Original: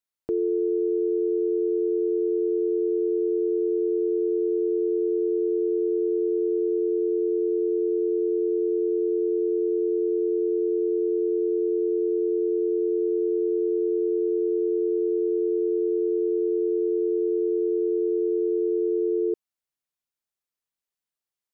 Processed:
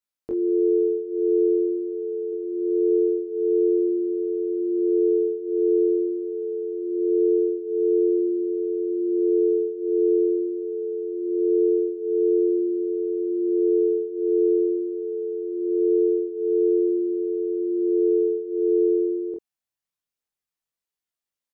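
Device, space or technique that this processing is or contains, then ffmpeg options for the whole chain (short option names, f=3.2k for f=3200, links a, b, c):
double-tracked vocal: -filter_complex "[0:a]asettb=1/sr,asplit=3[a][b][c];[a]atrim=end=2.324[d];[b]atrim=start=2.32:end=2.9,asetpts=PTS-STARTPTS,afade=t=in:d=0.004:c=qsin,afade=t=out:st=0.576:d=0.004:c=qsin,bandreject=f=400:w=12[e];[c]atrim=start=2.896[f];[d][e]acrossfade=d=0.004:c1=hsin:c2=qsin[g];[g][f]acrossfade=d=0.004:c1=qsin:c2=hsin,asplit=2[h][i];[i]adelay=23,volume=-4.5dB[j];[h][j]amix=inputs=2:normalize=0,flanger=delay=19:depth=5.2:speed=0.23,volume=1.5dB"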